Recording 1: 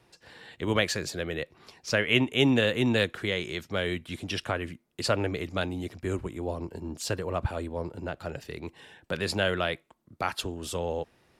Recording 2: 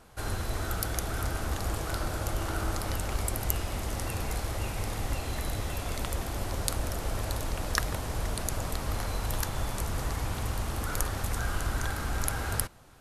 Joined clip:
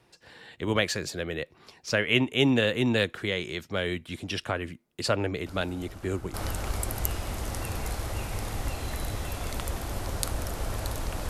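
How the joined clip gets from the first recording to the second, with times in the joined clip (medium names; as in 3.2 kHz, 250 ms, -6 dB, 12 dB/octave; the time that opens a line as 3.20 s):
recording 1
5.46 s: add recording 2 from 1.91 s 0.88 s -15 dB
6.34 s: go over to recording 2 from 2.79 s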